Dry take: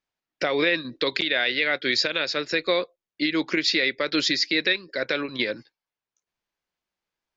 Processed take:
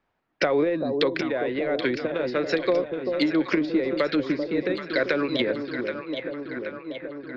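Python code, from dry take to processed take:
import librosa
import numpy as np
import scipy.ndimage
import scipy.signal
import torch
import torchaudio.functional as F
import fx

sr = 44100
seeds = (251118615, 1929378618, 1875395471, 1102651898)

p1 = 10.0 ** (-19.5 / 20.0) * np.tanh(x / 10.0 ** (-19.5 / 20.0))
p2 = x + F.gain(torch.from_numpy(p1), -4.0).numpy()
p3 = fx.high_shelf(p2, sr, hz=4300.0, db=8.5)
p4 = fx.env_lowpass_down(p3, sr, base_hz=640.0, full_db=-15.0)
p5 = p4 + fx.echo_alternate(p4, sr, ms=389, hz=810.0, feedback_pct=75, wet_db=-7, dry=0)
p6 = fx.env_lowpass(p5, sr, base_hz=1400.0, full_db=-21.0)
y = fx.band_squash(p6, sr, depth_pct=40)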